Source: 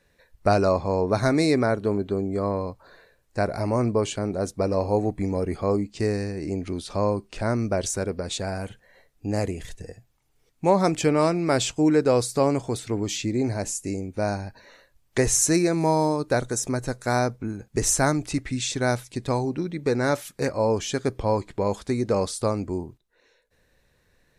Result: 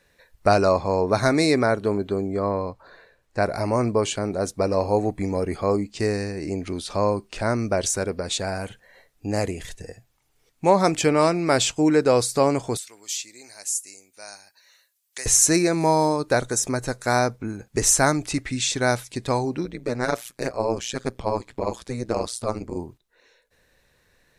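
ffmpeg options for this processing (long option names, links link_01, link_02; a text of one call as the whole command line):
ffmpeg -i in.wav -filter_complex "[0:a]asettb=1/sr,asplit=3[link_01][link_02][link_03];[link_01]atrim=end=2.324[link_04];[link_02]atrim=start=2.32:end=3.42,asetpts=PTS-STARTPTS,afade=type=in:duration=0.004:curve=qsin,afade=type=out:start_time=1.096:duration=0.004:curve=qsin,lowpass=frequency=3600:poles=1[link_05];[link_03]atrim=start=3.416[link_06];[link_04][link_05]acrossfade=duration=0.004:curve1=hsin:curve2=qsin[link_07];[link_07][link_06]acrossfade=duration=0.004:curve1=qsin:curve2=hsin,asettb=1/sr,asplit=3[link_08][link_09][link_10];[link_08]atrim=end=12.774[link_11];[link_09]atrim=start=12.77:end=15.26,asetpts=PTS-STARTPTS,afade=type=in:duration=0.004:curve=qsin,afade=type=out:start_time=2.486:duration=0.004:curve=qsin,aderivative[link_12];[link_10]atrim=start=15.256[link_13];[link_11][link_12]acrossfade=duration=0.004:curve1=hsin:curve2=qsin[link_14];[link_14][link_13]acrossfade=duration=0.004:curve1=qsin:curve2=hsin,asettb=1/sr,asplit=3[link_15][link_16][link_17];[link_15]atrim=end=19.654[link_18];[link_16]atrim=start=19.65:end=22.77,asetpts=PTS-STARTPTS,afade=type=in:duration=0.004:curve=qsin,afade=type=out:start_time=3.116:duration=0.004:curve=qsin,tremolo=f=120:d=0.974[link_19];[link_17]atrim=start=22.766[link_20];[link_18][link_19]acrossfade=duration=0.004:curve1=hsin:curve2=qsin[link_21];[link_21][link_20]acrossfade=duration=0.004:curve1=qsin:curve2=hsin,lowshelf=frequency=470:gain=-5.5,volume=4.5dB" out.wav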